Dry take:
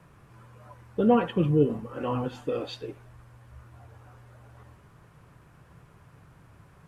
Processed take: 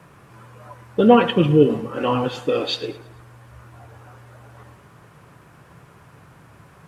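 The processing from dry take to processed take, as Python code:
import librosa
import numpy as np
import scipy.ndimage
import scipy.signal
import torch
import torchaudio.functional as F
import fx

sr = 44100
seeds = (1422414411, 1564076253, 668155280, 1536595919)

p1 = fx.highpass(x, sr, hz=160.0, slope=6)
p2 = p1 + fx.echo_feedback(p1, sr, ms=109, feedback_pct=48, wet_db=-17.0, dry=0)
p3 = fx.dynamic_eq(p2, sr, hz=3700.0, q=0.8, threshold_db=-53.0, ratio=4.0, max_db=7)
y = p3 * librosa.db_to_amplitude(9.0)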